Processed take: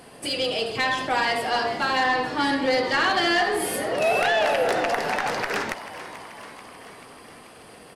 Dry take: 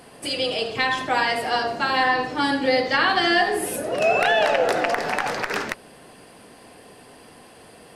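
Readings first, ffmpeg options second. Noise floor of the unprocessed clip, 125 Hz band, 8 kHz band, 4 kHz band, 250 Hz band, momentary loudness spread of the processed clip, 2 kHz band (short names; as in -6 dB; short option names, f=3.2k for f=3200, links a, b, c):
-48 dBFS, -1.0 dB, 0.0 dB, -1.5 dB, -1.5 dB, 18 LU, -1.5 dB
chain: -filter_complex "[0:a]asoftclip=type=tanh:threshold=-15dB,asplit=8[a][b][c][d][e][f][g][h];[b]adelay=436,afreqshift=87,volume=-14dB[i];[c]adelay=872,afreqshift=174,volume=-18.3dB[j];[d]adelay=1308,afreqshift=261,volume=-22.6dB[k];[e]adelay=1744,afreqshift=348,volume=-26.9dB[l];[f]adelay=2180,afreqshift=435,volume=-31.2dB[m];[g]adelay=2616,afreqshift=522,volume=-35.5dB[n];[h]adelay=3052,afreqshift=609,volume=-39.8dB[o];[a][i][j][k][l][m][n][o]amix=inputs=8:normalize=0"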